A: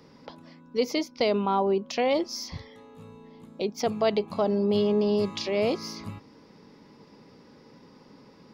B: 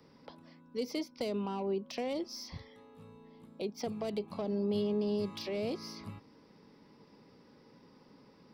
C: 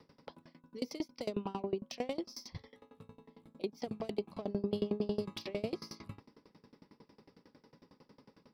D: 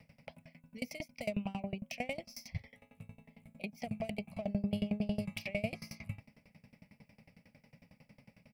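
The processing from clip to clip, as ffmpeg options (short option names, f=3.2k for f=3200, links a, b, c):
-filter_complex "[0:a]acrossover=split=650[a][b];[b]asoftclip=type=tanh:threshold=-28dB[c];[a][c]amix=inputs=2:normalize=0,acrossover=split=380|3000[d][e][f];[e]acompressor=threshold=-31dB:ratio=6[g];[d][g][f]amix=inputs=3:normalize=0,bandreject=f=6.7k:w=5.3,volume=-7dB"
-af "aeval=exprs='val(0)*pow(10,-25*if(lt(mod(11*n/s,1),2*abs(11)/1000),1-mod(11*n/s,1)/(2*abs(11)/1000),(mod(11*n/s,1)-2*abs(11)/1000)/(1-2*abs(11)/1000))/20)':c=same,volume=4.5dB"
-af "firequalizer=gain_entry='entry(120,0);entry(220,-5);entry(350,-25);entry(640,-1);entry(1000,-18);entry(1600,-11);entry(2300,6);entry(3600,-14);entry(8700,0)':delay=0.05:min_phase=1,volume=7dB"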